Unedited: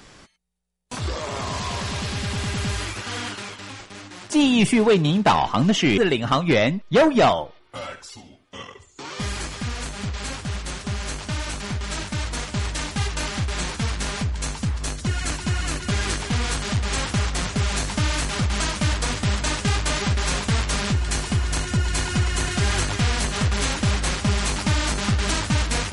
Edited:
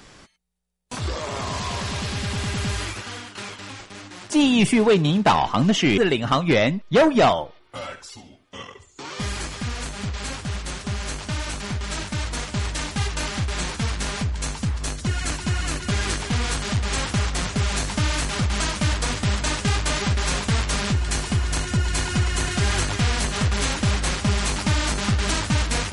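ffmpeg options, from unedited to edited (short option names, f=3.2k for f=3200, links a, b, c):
-filter_complex "[0:a]asplit=2[a][b];[a]atrim=end=3.35,asetpts=PTS-STARTPTS,afade=t=out:st=2.9:d=0.45:silence=0.223872[c];[b]atrim=start=3.35,asetpts=PTS-STARTPTS,afade=t=in:d=0.004:c=hsin:silence=0.223872[d];[c][d]concat=n=2:v=0:a=1"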